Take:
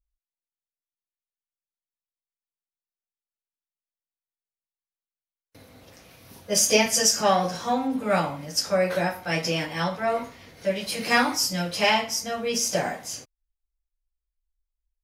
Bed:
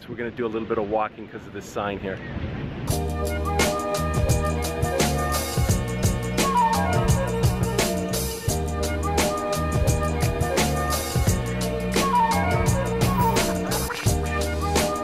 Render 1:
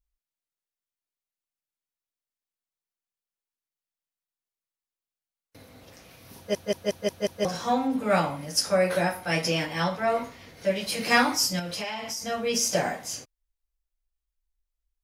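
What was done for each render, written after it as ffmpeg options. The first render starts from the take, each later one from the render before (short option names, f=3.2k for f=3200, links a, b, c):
-filter_complex "[0:a]asettb=1/sr,asplit=3[a][b][c];[a]atrim=end=8.304[d];[b]atrim=start=8.3:end=9.48,asetpts=PTS-STARTPTS,afade=t=in:d=0.004:c=qsin,afade=t=out:st=1.176:d=0.004:c=qsin,equalizer=f=10k:w=7.8:g=12.5[e];[c]atrim=start=9.476[f];[d][e]acrossfade=d=0.004:c1=hsin:c2=qsin[g];[g][f]acrossfade=d=0.004:c1=qsin:c2=hsin,asettb=1/sr,asplit=3[h][i][j];[h]atrim=end=11.594[k];[i]atrim=start=11.59:end=12.22,asetpts=PTS-STARTPTS,afade=t=in:d=0.004:c=qsin,afade=t=out:st=0.626:d=0.004:c=qsin,acompressor=threshold=-29dB:ratio=10:attack=3.2:release=140:knee=1:detection=peak[l];[j]atrim=start=12.216[m];[k][l]acrossfade=d=0.004:c1=hsin:c2=qsin[n];[n][m]acrossfade=d=0.004:c1=qsin:c2=hsin,asplit=7[o][p][q][r][s][t][u];[o]atrim=end=6.552[v];[p]atrim=start=6.368:end=6.552[w];[q]atrim=start=6.368:end=6.552[x];[r]atrim=start=6.368:end=6.552[y];[s]atrim=start=6.368:end=6.552[z];[t]atrim=start=6.368:end=6.552[aa];[u]atrim=start=7.448[ab];[v][w]acrossfade=d=0.004:c1=hsin:c2=hsin[ac];[ac][x]acrossfade=d=0.004:c1=hsin:c2=hsin[ad];[ad][y]acrossfade=d=0.004:c1=hsin:c2=hsin[ae];[ae][z]acrossfade=d=0.004:c1=hsin:c2=hsin[af];[af][aa]acrossfade=d=0.004:c1=hsin:c2=hsin[ag];[ag][ab]acrossfade=d=0.004:c1=hsin:c2=hsin"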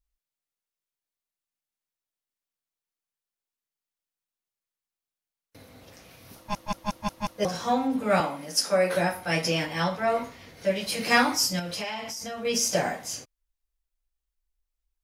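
-filter_complex "[0:a]asettb=1/sr,asplit=3[a][b][c];[a]atrim=end=6.354[d];[b]atrim=start=6.35:end=7.38,asetpts=PTS-STARTPTS,afade=t=in:d=0.004:c=qsin,afade=t=out:st=1.026:d=0.004:c=qsin,aeval=exprs='val(0)*sin(2*PI*420*n/s)':c=same[e];[c]atrim=start=7.376[f];[d][e]acrossfade=d=0.004:c1=hsin:c2=qsin[g];[g][f]acrossfade=d=0.004:c1=qsin:c2=hsin,asettb=1/sr,asplit=3[h][i][j];[h]atrim=end=8.204[k];[i]atrim=start=8.2:end=8.94,asetpts=PTS-STARTPTS,afade=t=in:d=0.004:c=qsin,afade=t=out:st=0.736:d=0.004:c=qsin,highpass=f=190:w=0.5412,highpass=f=190:w=1.3066[l];[j]atrim=start=8.936[m];[k][l]acrossfade=d=0.004:c1=hsin:c2=qsin[n];[n][m]acrossfade=d=0.004:c1=qsin:c2=hsin,asettb=1/sr,asplit=3[o][p][q];[o]atrim=end=12.004[r];[p]atrim=start=12:end=12.45,asetpts=PTS-STARTPTS,afade=t=in:d=0.004:c=qsin,afade=t=out:st=0.446:d=0.004:c=qsin,acompressor=threshold=-32dB:ratio=4:attack=3.2:release=140:knee=1:detection=peak[s];[q]atrim=start=12.446[t];[r][s]acrossfade=d=0.004:c1=hsin:c2=qsin[u];[u][t]acrossfade=d=0.004:c1=qsin:c2=hsin"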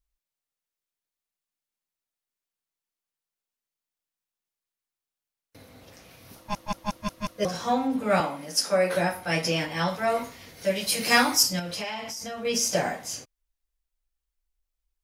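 -filter_complex "[0:a]asettb=1/sr,asplit=3[a][b][c];[a]atrim=end=6.974[d];[b]atrim=start=6.97:end=7.54,asetpts=PTS-STARTPTS,afade=t=in:d=0.004:c=qsin,afade=t=out:st=0.566:d=0.004:c=qsin,asuperstop=centerf=850:order=4:qfactor=4.3[e];[c]atrim=start=7.536[f];[d][e]acrossfade=d=0.004:c1=hsin:c2=qsin[g];[g][f]acrossfade=d=0.004:c1=qsin:c2=hsin,asettb=1/sr,asplit=3[h][i][j];[h]atrim=end=9.884[k];[i]atrim=start=9.88:end=11.43,asetpts=PTS-STARTPTS,afade=t=in:d=0.004:c=qsin,afade=t=out:st=1.546:d=0.004:c=qsin,aemphasis=mode=production:type=cd[l];[j]atrim=start=11.426[m];[k][l]acrossfade=d=0.004:c1=hsin:c2=qsin[n];[n][m]acrossfade=d=0.004:c1=qsin:c2=hsin"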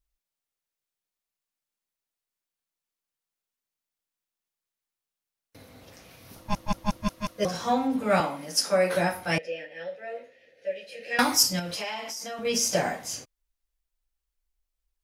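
-filter_complex "[0:a]asettb=1/sr,asplit=3[a][b][c];[a]atrim=end=6.354[d];[b]atrim=start=6.35:end=7.08,asetpts=PTS-STARTPTS,afade=t=in:d=0.004:c=qsin,afade=t=out:st=0.726:d=0.004:c=qsin,lowshelf=f=220:g=8[e];[c]atrim=start=7.076[f];[d][e]acrossfade=d=0.004:c1=hsin:c2=qsin[g];[g][f]acrossfade=d=0.004:c1=qsin:c2=hsin,asettb=1/sr,asplit=3[h][i][j];[h]atrim=end=9.384[k];[i]atrim=start=9.38:end=11.19,asetpts=PTS-STARTPTS,afade=t=in:d=0.004:c=qsin,afade=t=out:st=1.806:d=0.004:c=qsin,asplit=3[l][m][n];[l]bandpass=f=530:t=q:w=8,volume=0dB[o];[m]bandpass=f=1.84k:t=q:w=8,volume=-6dB[p];[n]bandpass=f=2.48k:t=q:w=8,volume=-9dB[q];[o][p][q]amix=inputs=3:normalize=0[r];[j]atrim=start=11.186[s];[k][r]acrossfade=d=0.004:c1=hsin:c2=qsin[t];[t][s]acrossfade=d=0.004:c1=qsin:c2=hsin,asettb=1/sr,asplit=3[u][v][w];[u]atrim=end=11.764[x];[v]atrim=start=11.76:end=12.39,asetpts=PTS-STARTPTS,afade=t=in:d=0.004:c=qsin,afade=t=out:st=0.626:d=0.004:c=qsin,highpass=280[y];[w]atrim=start=12.386[z];[x][y]acrossfade=d=0.004:c1=hsin:c2=qsin[aa];[aa][z]acrossfade=d=0.004:c1=qsin:c2=hsin"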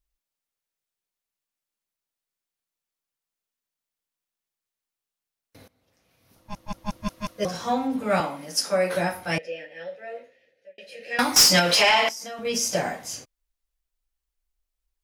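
-filter_complex "[0:a]asettb=1/sr,asplit=3[a][b][c];[a]atrim=end=11.364[d];[b]atrim=start=11.36:end=12.09,asetpts=PTS-STARTPTS,afade=t=in:d=0.004:c=qsin,afade=t=out:st=0.726:d=0.004:c=qsin,asplit=2[e][f];[f]highpass=f=720:p=1,volume=25dB,asoftclip=type=tanh:threshold=-4.5dB[g];[e][g]amix=inputs=2:normalize=0,lowpass=f=5.5k:p=1,volume=-6dB[h];[c]atrim=start=12.086[i];[d][h]acrossfade=d=0.004:c1=hsin:c2=qsin[j];[j][i]acrossfade=d=0.004:c1=qsin:c2=hsin,asplit=3[k][l][m];[k]atrim=end=5.68,asetpts=PTS-STARTPTS,afade=t=out:st=5.676:d=0.004:c=hsin:silence=0.0944061[n];[l]atrim=start=5.68:end=10.78,asetpts=PTS-STARTPTS,afade=t=in:d=1.52:c=qua:silence=0.0944061,afade=t=out:st=4.49:d=0.61[o];[m]atrim=start=10.78,asetpts=PTS-STARTPTS,afade=t=in:d=0.004:c=hsin[p];[n][o][p]concat=n=3:v=0:a=1"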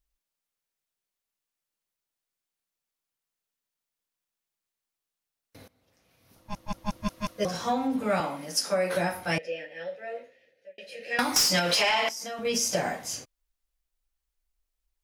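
-af "acompressor=threshold=-23dB:ratio=3"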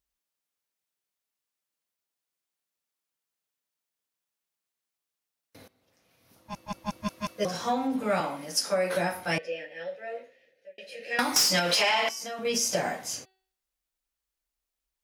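-af "highpass=f=130:p=1,bandreject=f=379.1:t=h:w=4,bandreject=f=758.2:t=h:w=4,bandreject=f=1.1373k:t=h:w=4,bandreject=f=1.5164k:t=h:w=4,bandreject=f=1.8955k:t=h:w=4,bandreject=f=2.2746k:t=h:w=4,bandreject=f=2.6537k:t=h:w=4,bandreject=f=3.0328k:t=h:w=4,bandreject=f=3.4119k:t=h:w=4,bandreject=f=3.791k:t=h:w=4,bandreject=f=4.1701k:t=h:w=4,bandreject=f=4.5492k:t=h:w=4"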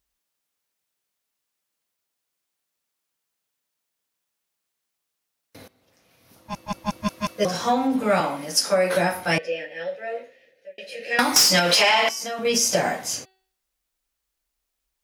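-af "volume=6.5dB"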